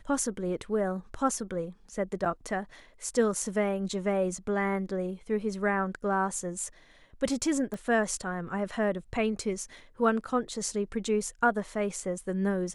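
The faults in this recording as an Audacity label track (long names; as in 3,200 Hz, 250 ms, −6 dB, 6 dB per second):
2.250000	2.260000	drop-out 6.8 ms
7.740000	7.740000	click −25 dBFS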